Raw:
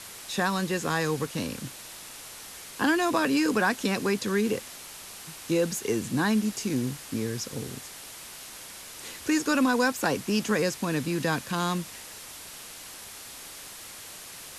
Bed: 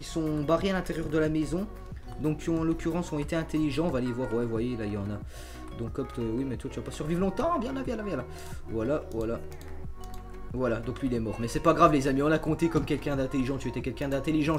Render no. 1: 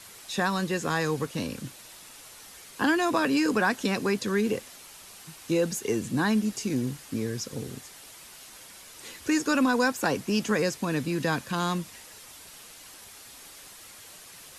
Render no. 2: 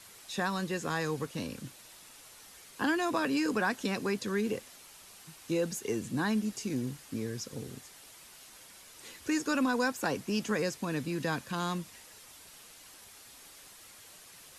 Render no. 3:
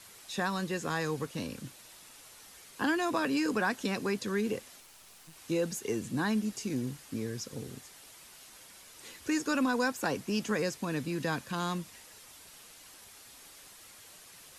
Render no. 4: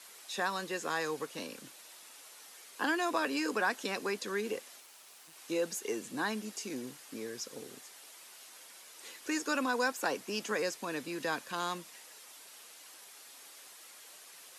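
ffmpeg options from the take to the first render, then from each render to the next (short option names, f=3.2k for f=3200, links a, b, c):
-af "afftdn=nr=6:nf=-44"
-af "volume=-5.5dB"
-filter_complex "[0:a]asettb=1/sr,asplit=3[a][b][c];[a]atrim=end=4.804[d];[b]atrim=start=4.8:end=5.36,asetpts=PTS-STARTPTS,afade=t=in:d=0.004:c=qsin,afade=t=out:st=0.556:d=0.004:c=qsin,aeval=exprs='clip(val(0),-1,0.001)':c=same[e];[c]atrim=start=5.356[f];[d][e]acrossfade=d=0.004:c1=hsin:c2=qsin[g];[g][f]acrossfade=d=0.004:c1=qsin:c2=hsin"
-af "highpass=370"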